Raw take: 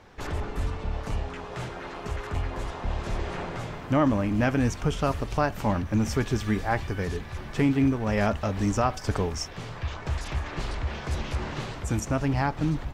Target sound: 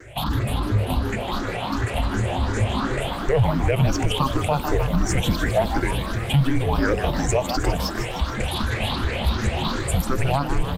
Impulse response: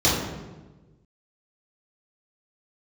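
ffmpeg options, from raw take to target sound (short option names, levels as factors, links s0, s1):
-filter_complex "[0:a]afftfilt=real='re*pow(10,22/40*sin(2*PI*(0.54*log(max(b,1)*sr/1024/100)/log(2)-(2.3)*(pts-256)/sr)))':imag='im*pow(10,22/40*sin(2*PI*(0.54*log(max(b,1)*sr/1024/100)/log(2)-(2.3)*(pts-256)/sr)))':win_size=1024:overlap=0.75,bandreject=f=570:w=15,aexciter=amount=1.1:drive=6.3:freq=3100,asplit=2[s0][s1];[s1]acompressor=threshold=0.0501:ratio=8,volume=1.19[s2];[s0][s2]amix=inputs=2:normalize=0,bandreject=f=50:t=h:w=6,bandreject=f=100:t=h:w=6,bandreject=f=150:t=h:w=6,afreqshift=-140,atempo=1.2,asplit=2[s3][s4];[s4]asplit=7[s5][s6][s7][s8][s9][s10][s11];[s5]adelay=154,afreqshift=150,volume=0.282[s12];[s6]adelay=308,afreqshift=300,volume=0.172[s13];[s7]adelay=462,afreqshift=450,volume=0.105[s14];[s8]adelay=616,afreqshift=600,volume=0.0638[s15];[s9]adelay=770,afreqshift=750,volume=0.0389[s16];[s10]adelay=924,afreqshift=900,volume=0.0237[s17];[s11]adelay=1078,afreqshift=1050,volume=0.0145[s18];[s12][s13][s14][s15][s16][s17][s18]amix=inputs=7:normalize=0[s19];[s3][s19]amix=inputs=2:normalize=0,alimiter=level_in=2.37:limit=0.891:release=50:level=0:latency=1,volume=0.355"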